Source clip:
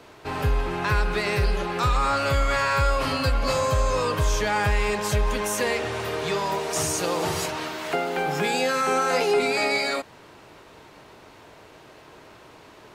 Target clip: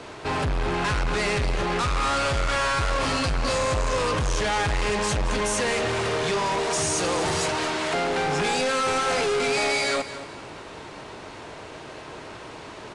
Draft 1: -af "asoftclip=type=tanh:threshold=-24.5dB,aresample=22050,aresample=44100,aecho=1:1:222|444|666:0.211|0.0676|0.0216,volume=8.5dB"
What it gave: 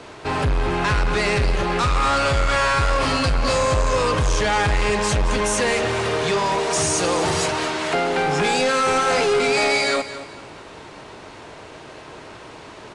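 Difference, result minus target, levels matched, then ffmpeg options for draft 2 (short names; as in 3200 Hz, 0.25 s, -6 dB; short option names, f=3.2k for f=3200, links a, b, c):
soft clip: distortion -4 dB
-af "asoftclip=type=tanh:threshold=-31dB,aresample=22050,aresample=44100,aecho=1:1:222|444|666:0.211|0.0676|0.0216,volume=8.5dB"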